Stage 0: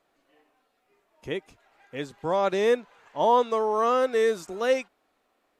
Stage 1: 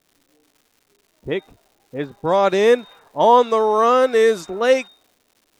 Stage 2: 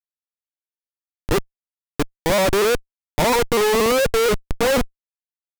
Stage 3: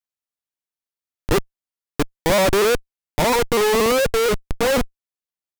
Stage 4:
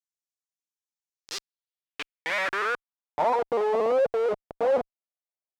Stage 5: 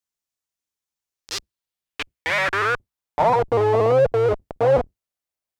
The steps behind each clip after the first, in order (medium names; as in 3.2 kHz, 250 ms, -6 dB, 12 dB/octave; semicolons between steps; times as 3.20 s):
whistle 3.7 kHz -53 dBFS; level-controlled noise filter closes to 310 Hz, open at -22.5 dBFS; crackle 370 per s -54 dBFS; trim +8 dB
Schmitt trigger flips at -20 dBFS; vibrato with a chosen wave saw up 4.2 Hz, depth 100 cents; trim +2.5 dB
gain riding 2 s
band-pass sweep 6.5 kHz -> 640 Hz, 1.08–3.49 s
octave divider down 2 oct, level -1 dB; trim +6 dB